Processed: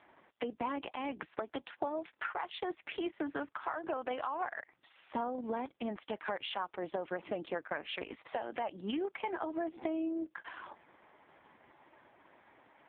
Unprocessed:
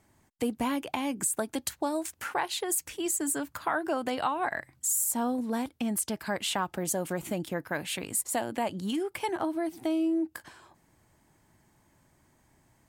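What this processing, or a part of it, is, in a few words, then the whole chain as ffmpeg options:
voicemail: -af "highpass=410,lowpass=3200,acompressor=threshold=-46dB:ratio=6,volume=12.5dB" -ar 8000 -c:a libopencore_amrnb -b:a 4750

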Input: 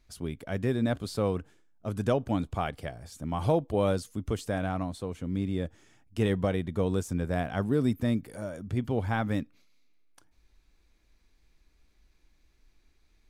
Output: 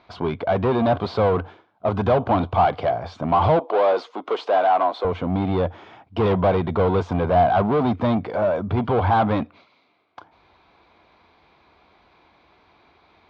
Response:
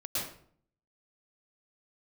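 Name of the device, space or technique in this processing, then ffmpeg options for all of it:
overdrive pedal into a guitar cabinet: -filter_complex "[0:a]asplit=2[link_01][link_02];[link_02]highpass=frequency=720:poles=1,volume=28dB,asoftclip=type=tanh:threshold=-14.5dB[link_03];[link_01][link_03]amix=inputs=2:normalize=0,lowpass=frequency=1900:poles=1,volume=-6dB,highpass=81,equalizer=frequency=89:width_type=q:width=4:gain=10,equalizer=frequency=280:width_type=q:width=4:gain=-4,equalizer=frequency=720:width_type=q:width=4:gain=6,equalizer=frequency=1000:width_type=q:width=4:gain=6,equalizer=frequency=1800:width_type=q:width=4:gain=-9,equalizer=frequency=2700:width_type=q:width=4:gain=-5,lowpass=frequency=3700:width=0.5412,lowpass=frequency=3700:width=1.3066,asettb=1/sr,asplit=3[link_04][link_05][link_06];[link_04]atrim=end=3.594[link_07];[link_05]atrim=start=3.59:end=5.05,asetpts=PTS-STARTPTS,afade=type=in:duration=0.004:curve=qsin,afade=type=out:start_time=1.456:duration=0.004:curve=qsin,highpass=frequency=340:width=0.5412,highpass=frequency=340:width=1.3066[link_08];[link_06]atrim=start=5.046[link_09];[link_07][link_08]acrossfade=duration=0.004:curve1=hsin:curve2=qsin[link_10];[link_10][link_09]acrossfade=duration=0.004:curve1=qsin:curve2=hsin,volume=2.5dB"

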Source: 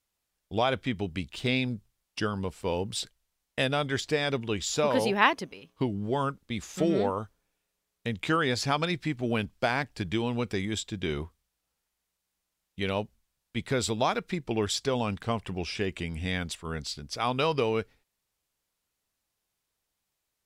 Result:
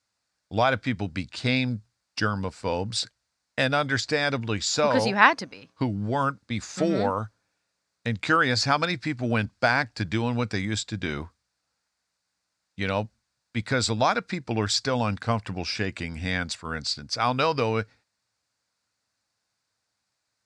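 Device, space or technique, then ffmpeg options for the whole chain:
car door speaker: -af "highpass=100,equalizer=frequency=110:width_type=q:width=4:gain=6,equalizer=frequency=160:width_type=q:width=4:gain=-6,equalizer=frequency=390:width_type=q:width=4:gain=-9,equalizer=frequency=1500:width_type=q:width=4:gain=5,equalizer=frequency=3100:width_type=q:width=4:gain=-8,equalizer=frequency=4600:width_type=q:width=4:gain=6,lowpass=frequency=8200:width=0.5412,lowpass=frequency=8200:width=1.3066,volume=4.5dB"

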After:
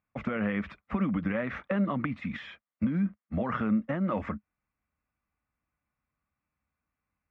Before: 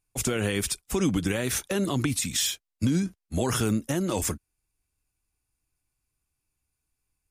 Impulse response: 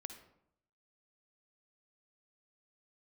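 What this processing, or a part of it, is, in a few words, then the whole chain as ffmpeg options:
bass amplifier: -af "acompressor=threshold=-29dB:ratio=3,highpass=70,equalizer=frequency=110:width_type=q:width=4:gain=-8,equalizer=frequency=210:width_type=q:width=4:gain=9,equalizer=frequency=380:width_type=q:width=4:gain=-9,equalizer=frequency=580:width_type=q:width=4:gain=6,equalizer=frequency=1200:width_type=q:width=4:gain=9,equalizer=frequency=2000:width_type=q:width=4:gain=6,lowpass=frequency=2200:width=0.5412,lowpass=frequency=2200:width=1.3066"

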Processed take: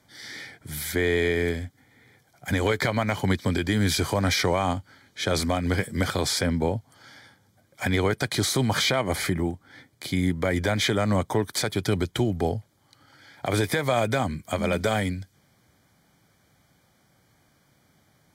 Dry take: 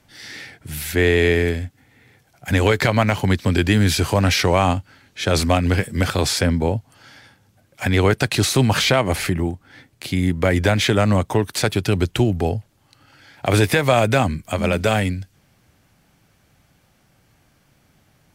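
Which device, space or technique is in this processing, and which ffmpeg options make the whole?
PA system with an anti-feedback notch: -af "highpass=frequency=100:poles=1,asuperstop=centerf=2700:order=20:qfactor=6.2,alimiter=limit=-10dB:level=0:latency=1:release=215,volume=-3dB"

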